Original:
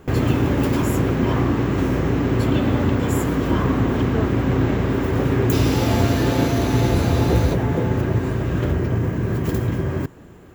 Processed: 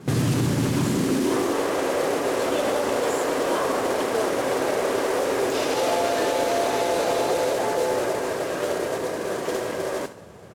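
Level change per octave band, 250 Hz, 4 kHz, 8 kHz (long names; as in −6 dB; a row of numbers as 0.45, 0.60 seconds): −7.5, +1.5, +5.0 decibels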